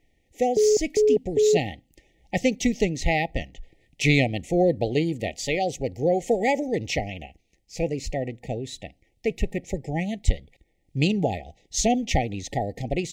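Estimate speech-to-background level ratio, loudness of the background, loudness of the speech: −3.5 dB, −22.5 LKFS, −26.0 LKFS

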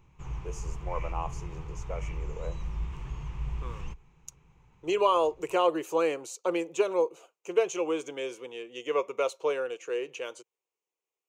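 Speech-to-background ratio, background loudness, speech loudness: 9.0 dB, −39.0 LKFS, −30.0 LKFS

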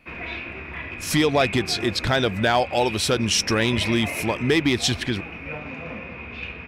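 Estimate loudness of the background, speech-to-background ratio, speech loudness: −32.5 LKFS, 10.5 dB, −22.0 LKFS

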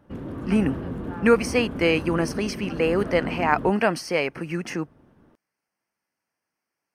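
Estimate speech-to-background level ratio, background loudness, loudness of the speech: 9.0 dB, −33.0 LKFS, −24.0 LKFS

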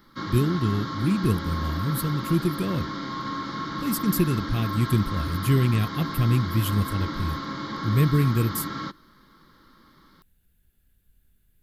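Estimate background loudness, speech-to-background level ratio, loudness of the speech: −32.0 LKFS, 6.5 dB, −25.5 LKFS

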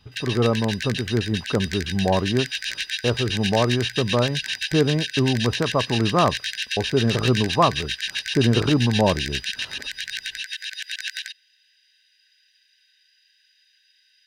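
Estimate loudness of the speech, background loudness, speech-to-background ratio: −23.0 LKFS, −27.5 LKFS, 4.5 dB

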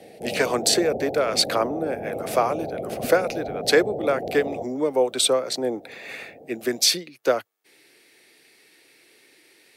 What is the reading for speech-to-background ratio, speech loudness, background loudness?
8.0 dB, −23.5 LKFS, −31.5 LKFS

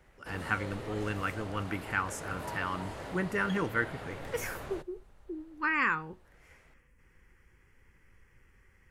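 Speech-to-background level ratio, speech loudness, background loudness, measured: 9.0 dB, −34.0 LKFS, −43.0 LKFS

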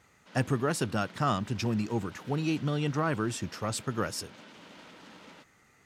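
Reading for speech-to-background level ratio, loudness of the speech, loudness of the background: 19.5 dB, −31.5 LKFS, −51.0 LKFS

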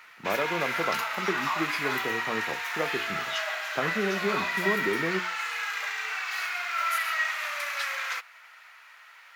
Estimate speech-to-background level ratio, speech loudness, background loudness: −4.0 dB, −33.0 LKFS, −29.0 LKFS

